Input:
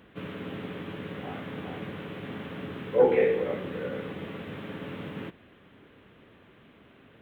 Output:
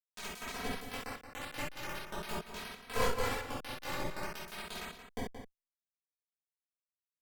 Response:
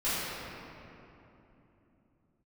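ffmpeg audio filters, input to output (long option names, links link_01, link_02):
-filter_complex "[0:a]asettb=1/sr,asplit=3[link_01][link_02][link_03];[link_01]atrim=end=2.444[link_04];[link_02]atrim=start=2.44:end=4.59,asetpts=PTS-STARTPTS,afade=type=in:duration=0.004:curve=qsin,afade=type=out:start_time=2.146:duration=0.004:curve=qsin,highpass=frequency=41:poles=1[link_05];[link_03]atrim=start=4.586[link_06];[link_04][link_05]acrossfade=duration=0.004:curve1=hsin:curve2=qsin[link_07];[link_07][link_06]acrossfade=duration=0.004:curve1=qsin:curve2=hsin,acompressor=threshold=-40dB:ratio=4,tremolo=f=48:d=0.519,aeval=exprs='(tanh(56.2*val(0)+0.7)-tanh(0.7))/56.2':channel_layout=same,acrusher=bits=5:mix=0:aa=0.000001,asplit=2[link_08][link_09];[link_09]adelay=174.9,volume=-9dB,highshelf=frequency=4000:gain=-3.94[link_10];[link_08][link_10]amix=inputs=2:normalize=0[link_11];[1:a]atrim=start_sample=2205,atrim=end_sample=3528,asetrate=37044,aresample=44100[link_12];[link_11][link_12]afir=irnorm=-1:irlink=0,asplit=2[link_13][link_14];[link_14]adelay=2.8,afreqshift=0.45[link_15];[link_13][link_15]amix=inputs=2:normalize=1,volume=8.5dB"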